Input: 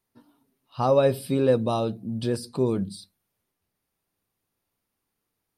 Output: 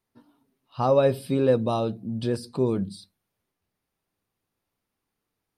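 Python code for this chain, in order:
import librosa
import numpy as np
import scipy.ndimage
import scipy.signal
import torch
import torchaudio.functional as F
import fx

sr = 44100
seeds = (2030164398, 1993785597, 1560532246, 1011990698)

y = fx.high_shelf(x, sr, hz=6900.0, db=-7.0)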